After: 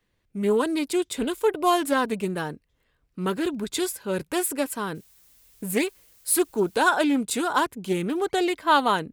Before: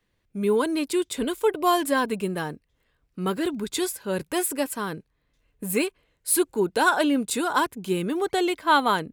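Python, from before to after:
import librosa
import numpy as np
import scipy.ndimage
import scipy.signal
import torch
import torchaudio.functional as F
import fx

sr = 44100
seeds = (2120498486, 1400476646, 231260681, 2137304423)

y = fx.dmg_noise_colour(x, sr, seeds[0], colour='blue', level_db=-57.0, at=(4.94, 6.77), fade=0.02)
y = fx.doppler_dist(y, sr, depth_ms=0.14)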